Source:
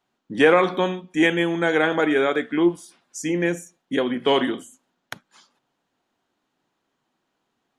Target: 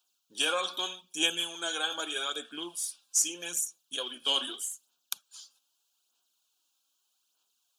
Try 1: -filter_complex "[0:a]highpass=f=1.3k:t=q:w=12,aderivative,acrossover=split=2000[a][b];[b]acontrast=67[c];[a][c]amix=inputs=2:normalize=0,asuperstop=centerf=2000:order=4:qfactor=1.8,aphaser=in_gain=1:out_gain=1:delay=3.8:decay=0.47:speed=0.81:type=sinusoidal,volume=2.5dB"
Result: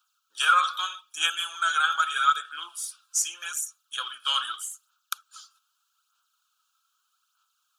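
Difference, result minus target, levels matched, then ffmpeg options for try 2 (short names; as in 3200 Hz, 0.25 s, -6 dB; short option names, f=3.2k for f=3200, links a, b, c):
1000 Hz band +9.0 dB
-filter_complex "[0:a]aderivative,acrossover=split=2000[a][b];[b]acontrast=67[c];[a][c]amix=inputs=2:normalize=0,asuperstop=centerf=2000:order=4:qfactor=1.8,aphaser=in_gain=1:out_gain=1:delay=3.8:decay=0.47:speed=0.81:type=sinusoidal,volume=2.5dB"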